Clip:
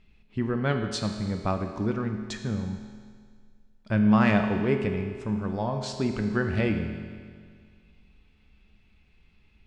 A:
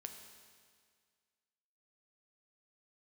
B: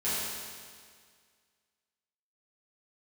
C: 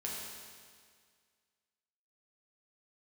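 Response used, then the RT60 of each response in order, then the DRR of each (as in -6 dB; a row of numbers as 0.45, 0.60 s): A; 1.9, 1.9, 1.9 s; 4.5, -12.5, -4.5 dB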